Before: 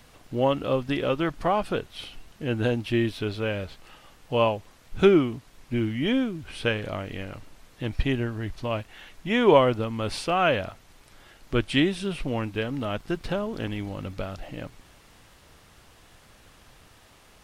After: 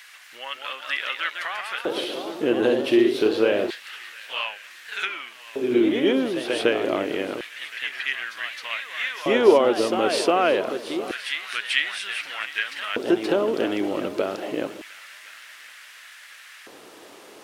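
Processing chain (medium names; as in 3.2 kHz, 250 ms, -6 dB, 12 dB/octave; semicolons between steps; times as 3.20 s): high-pass 55 Hz; compression 2.5:1, threshold -30 dBFS, peak gain reduction 12 dB; multi-head delay 355 ms, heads second and third, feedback 47%, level -17 dB; ever faster or slower copies 218 ms, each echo +1 st, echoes 3, each echo -6 dB; LFO high-pass square 0.27 Hz 360–1800 Hz; trim +7.5 dB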